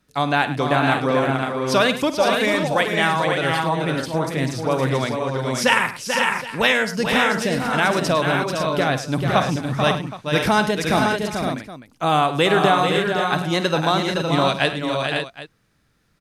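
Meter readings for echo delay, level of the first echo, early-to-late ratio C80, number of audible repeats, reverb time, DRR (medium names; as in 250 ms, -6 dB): 52 ms, -14.0 dB, no reverb, 6, no reverb, no reverb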